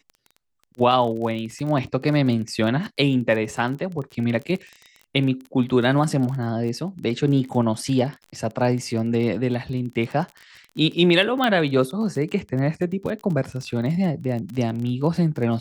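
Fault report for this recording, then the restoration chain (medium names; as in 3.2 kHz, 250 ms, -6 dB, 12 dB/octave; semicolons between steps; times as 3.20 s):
crackle 31 per s -30 dBFS
11.44 s: pop -10 dBFS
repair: de-click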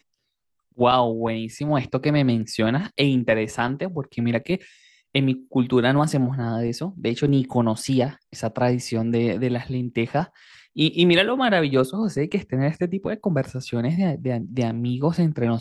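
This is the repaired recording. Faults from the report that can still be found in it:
11.44 s: pop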